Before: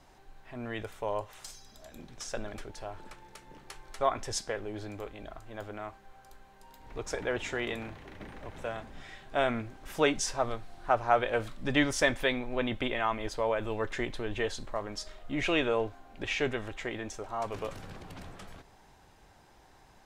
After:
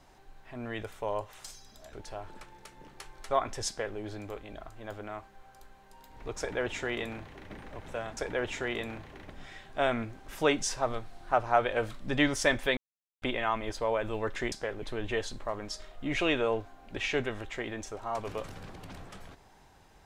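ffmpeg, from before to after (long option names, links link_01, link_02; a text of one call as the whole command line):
ffmpeg -i in.wav -filter_complex "[0:a]asplit=8[link_01][link_02][link_03][link_04][link_05][link_06][link_07][link_08];[link_01]atrim=end=1.932[link_09];[link_02]atrim=start=2.628:end=8.872[link_10];[link_03]atrim=start=7.088:end=8.222[link_11];[link_04]atrim=start=8.868:end=12.34,asetpts=PTS-STARTPTS,afade=type=out:start_time=3.468:duration=0.004:curve=hsin[link_12];[link_05]atrim=start=12.34:end=12.79,asetpts=PTS-STARTPTS,volume=0[link_13];[link_06]atrim=start=12.79:end=14.092,asetpts=PTS-STARTPTS,afade=type=in:duration=0.004:curve=hsin[link_14];[link_07]atrim=start=4.378:end=4.682[link_15];[link_08]atrim=start=14.088[link_16];[link_09][link_10]acrossfade=duration=0.004:curve1=hsin:curve2=hsin[link_17];[link_17][link_11]acrossfade=duration=0.004:curve1=hsin:curve2=hsin[link_18];[link_12][link_13][link_14]concat=n=3:v=0:a=1[link_19];[link_18][link_19]acrossfade=duration=0.004:curve1=hsin:curve2=hsin[link_20];[link_20][link_15]acrossfade=duration=0.004:curve1=hsin:curve2=hsin[link_21];[link_21][link_16]acrossfade=duration=0.004:curve1=hsin:curve2=hsin" out.wav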